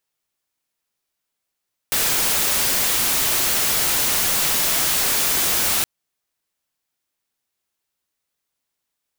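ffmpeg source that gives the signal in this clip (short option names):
-f lavfi -i "anoisesrc=c=white:a=0.183:d=3.92:r=44100:seed=1"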